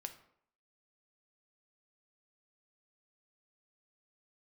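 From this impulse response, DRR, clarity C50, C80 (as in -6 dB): 6.5 dB, 11.5 dB, 15.5 dB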